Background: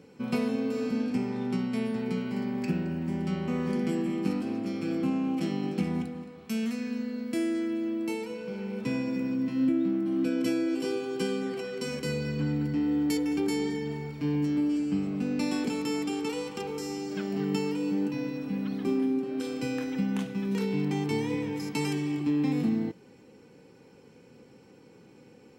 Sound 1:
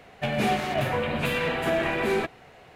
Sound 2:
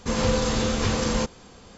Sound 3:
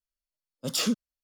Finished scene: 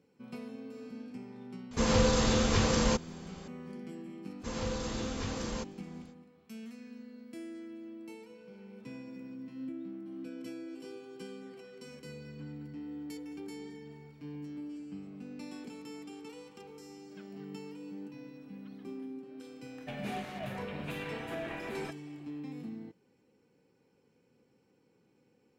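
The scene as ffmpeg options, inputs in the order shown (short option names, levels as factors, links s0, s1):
-filter_complex "[2:a]asplit=2[s0][s1];[0:a]volume=0.168[s2];[s0]atrim=end=1.77,asetpts=PTS-STARTPTS,volume=0.708,afade=t=in:d=0.004:c=hsin,afade=t=out:st=1.766:d=0.004:c=hsin,adelay=1710[s3];[s1]atrim=end=1.77,asetpts=PTS-STARTPTS,volume=0.224,afade=t=in:d=0.05,afade=t=out:st=1.72:d=0.05,adelay=4380[s4];[1:a]atrim=end=2.75,asetpts=PTS-STARTPTS,volume=0.188,afade=t=in:d=0.004:c=hsin,afade=t=out:st=2.746:d=0.004:c=hsin,adelay=19650[s5];[s2][s3][s4][s5]amix=inputs=4:normalize=0"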